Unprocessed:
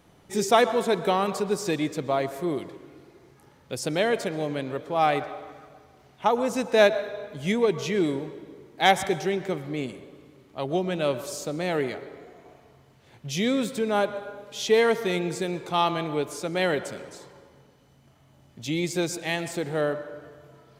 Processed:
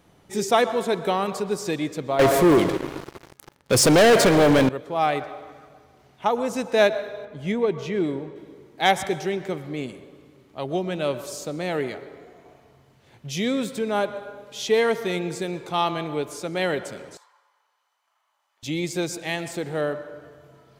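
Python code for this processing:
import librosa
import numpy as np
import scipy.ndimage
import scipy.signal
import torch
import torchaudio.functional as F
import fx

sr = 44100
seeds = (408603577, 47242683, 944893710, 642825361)

y = fx.leveller(x, sr, passes=5, at=(2.19, 4.69))
y = fx.high_shelf(y, sr, hz=3700.0, db=-11.5, at=(7.25, 8.36))
y = fx.ladder_highpass(y, sr, hz=870.0, resonance_pct=50, at=(17.17, 18.63))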